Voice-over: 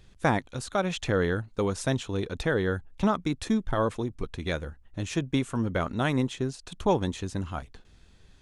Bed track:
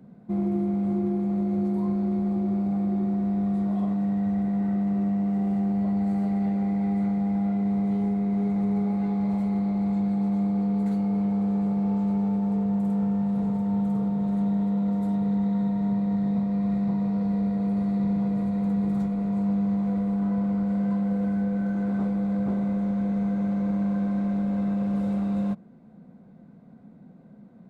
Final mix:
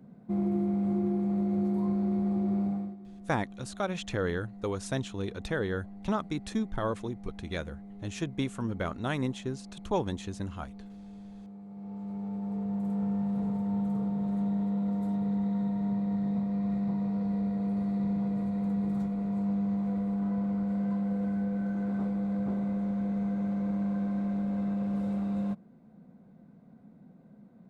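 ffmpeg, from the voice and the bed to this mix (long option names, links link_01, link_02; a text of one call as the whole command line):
ffmpeg -i stem1.wav -i stem2.wav -filter_complex "[0:a]adelay=3050,volume=-5dB[link_01];[1:a]volume=13.5dB,afade=type=out:start_time=2.64:duration=0.32:silence=0.11885,afade=type=in:start_time=11.67:duration=1.46:silence=0.149624[link_02];[link_01][link_02]amix=inputs=2:normalize=0" out.wav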